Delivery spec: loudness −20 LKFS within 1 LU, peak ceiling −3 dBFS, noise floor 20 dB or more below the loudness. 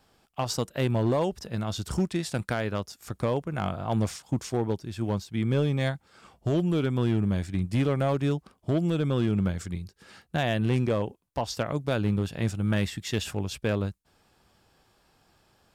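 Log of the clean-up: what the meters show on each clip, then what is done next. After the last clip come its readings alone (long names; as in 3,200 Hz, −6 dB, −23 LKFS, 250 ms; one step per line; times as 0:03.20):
share of clipped samples 0.9%; peaks flattened at −18.5 dBFS; integrated loudness −28.5 LKFS; sample peak −18.5 dBFS; target loudness −20.0 LKFS
→ clipped peaks rebuilt −18.5 dBFS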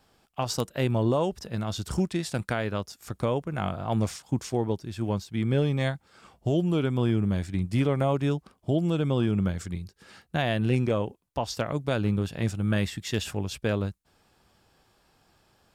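share of clipped samples 0.0%; integrated loudness −28.0 LKFS; sample peak −9.5 dBFS; target loudness −20.0 LKFS
→ level +8 dB
brickwall limiter −3 dBFS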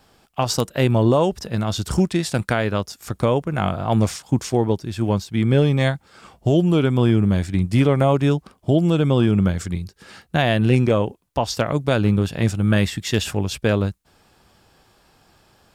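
integrated loudness −20.5 LKFS; sample peak −3.0 dBFS; background noise floor −59 dBFS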